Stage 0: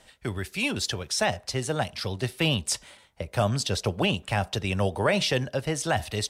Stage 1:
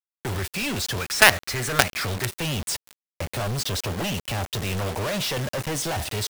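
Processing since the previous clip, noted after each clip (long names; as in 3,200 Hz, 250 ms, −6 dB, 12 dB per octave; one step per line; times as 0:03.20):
gain on a spectral selection 0:01.01–0:02.26, 1,100–2,600 Hz +11 dB
log-companded quantiser 2 bits
level −1 dB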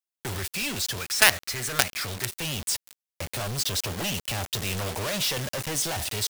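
high-shelf EQ 2,500 Hz +8 dB
speech leveller within 4 dB 2 s
level −7.5 dB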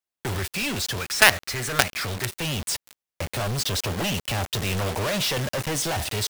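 high-shelf EQ 3,400 Hz −6.5 dB
level +5 dB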